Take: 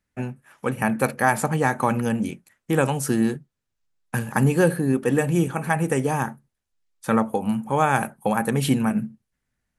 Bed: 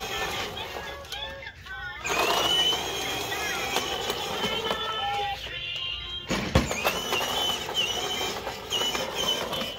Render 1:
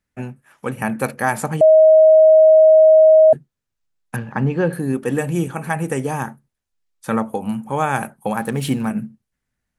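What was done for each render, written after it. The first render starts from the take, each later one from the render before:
0:01.61–0:03.33: beep over 631 Hz −6 dBFS
0:04.16–0:04.73: high-frequency loss of the air 240 metres
0:08.36–0:08.88: slack as between gear wheels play −38.5 dBFS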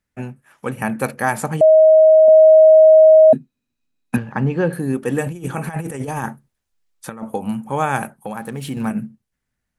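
0:02.28–0:04.18: hollow resonant body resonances 250/2,500/3,900 Hz, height 17 dB
0:05.26–0:07.23: compressor whose output falls as the input rises −25 dBFS, ratio −0.5
0:08.12–0:08.77: downward compressor 1.5 to 1, threshold −35 dBFS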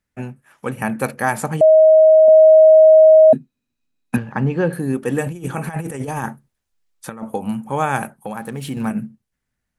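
no processing that can be heard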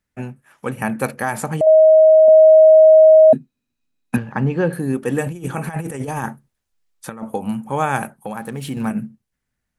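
0:01.12–0:01.67: downward compressor 2 to 1, threshold −17 dBFS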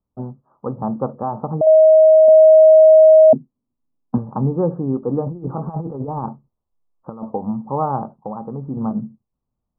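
Butterworth low-pass 1,200 Hz 72 dB per octave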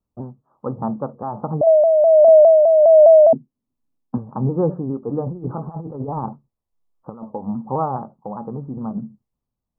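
amplitude tremolo 1.3 Hz, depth 44%
pitch modulation by a square or saw wave saw down 4.9 Hz, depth 100 cents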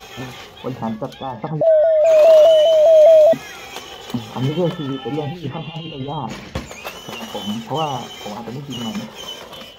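mix in bed −5 dB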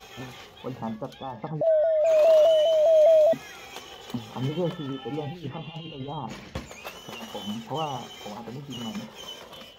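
level −8.5 dB

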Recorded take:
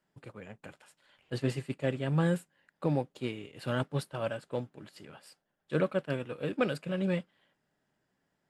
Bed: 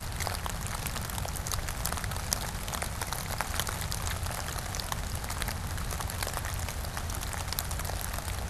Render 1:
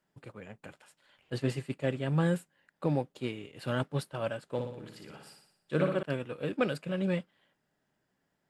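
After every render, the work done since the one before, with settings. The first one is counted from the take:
0:04.44–0:06.03: flutter between parallel walls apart 10.1 metres, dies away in 0.71 s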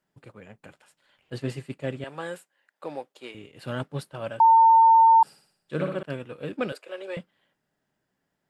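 0:02.04–0:03.35: high-pass filter 490 Hz
0:04.40–0:05.23: beep over 904 Hz −12 dBFS
0:06.72–0:07.17: Butterworth high-pass 370 Hz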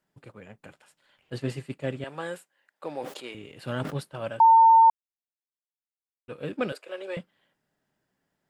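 0:02.93–0:03.94: level that may fall only so fast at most 51 dB per second
0:04.90–0:06.28: silence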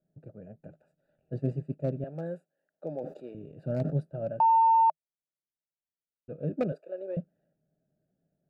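adaptive Wiener filter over 41 samples
thirty-one-band graphic EQ 160 Hz +9 dB, 630 Hz +10 dB, 1,000 Hz −11 dB, 2,000 Hz −5 dB, 3,150 Hz −9 dB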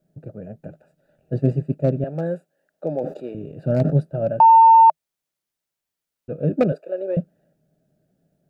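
level +11 dB

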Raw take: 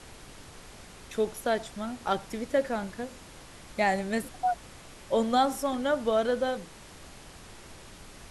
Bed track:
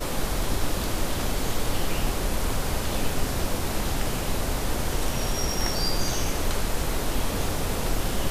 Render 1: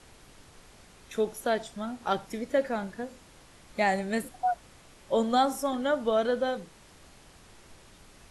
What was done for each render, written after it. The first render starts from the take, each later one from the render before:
noise reduction from a noise print 6 dB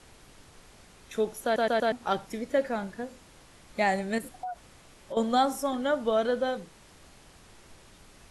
0:01.44: stutter in place 0.12 s, 4 plays
0:04.18–0:05.17: downward compressor, threshold −33 dBFS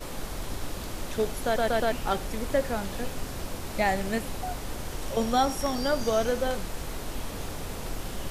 mix in bed track −8.5 dB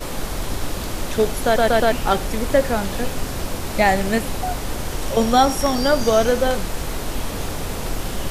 level +9 dB

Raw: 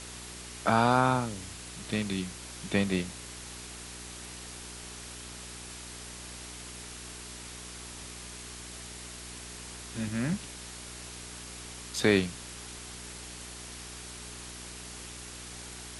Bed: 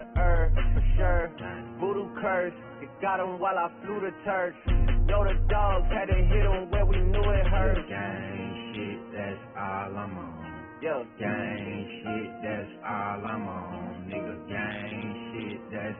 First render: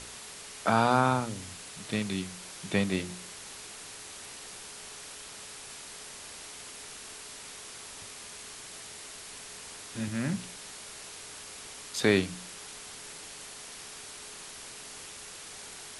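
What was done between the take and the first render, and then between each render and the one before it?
hum removal 60 Hz, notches 6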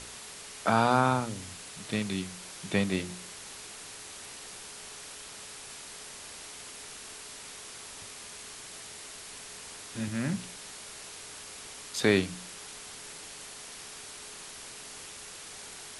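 no processing that can be heard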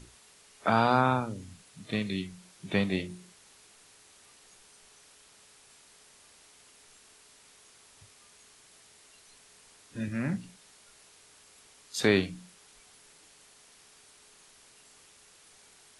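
noise reduction from a noise print 13 dB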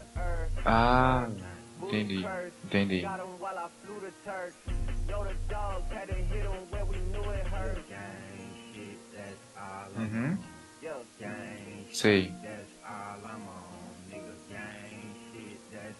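mix in bed −10 dB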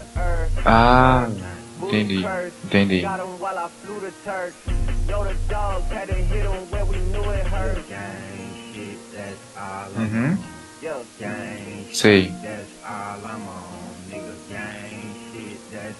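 level +10.5 dB
brickwall limiter −1 dBFS, peak gain reduction 1 dB

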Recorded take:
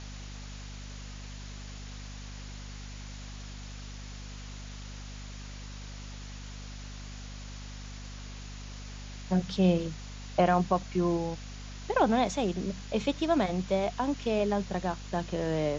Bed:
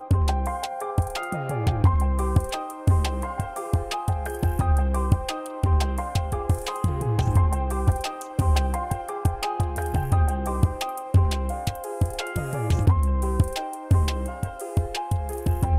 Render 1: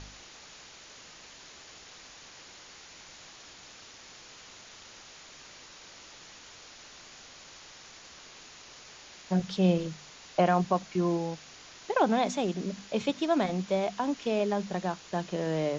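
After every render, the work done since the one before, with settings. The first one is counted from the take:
hum removal 50 Hz, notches 5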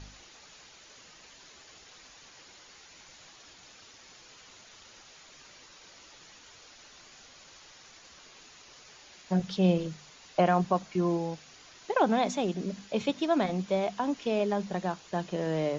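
broadband denoise 6 dB, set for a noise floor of −51 dBFS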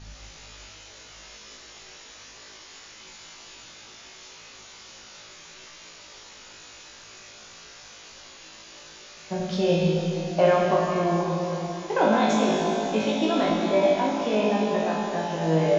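flutter between parallel walls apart 3.2 metres, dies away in 0.38 s
dense smooth reverb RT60 3.6 s, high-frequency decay 0.95×, DRR −2.5 dB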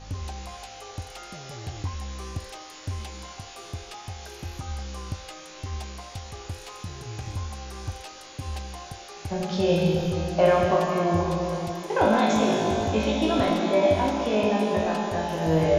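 mix in bed −13 dB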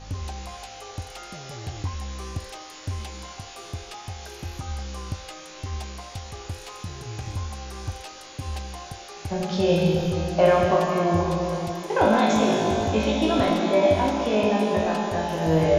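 level +1.5 dB

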